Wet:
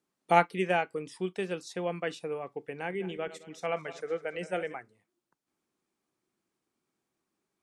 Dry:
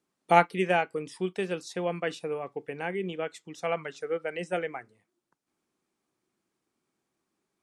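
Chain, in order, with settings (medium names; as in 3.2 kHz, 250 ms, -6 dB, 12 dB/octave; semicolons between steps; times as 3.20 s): 2.74–4.75 s: backward echo that repeats 108 ms, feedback 53%, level -14 dB; trim -2.5 dB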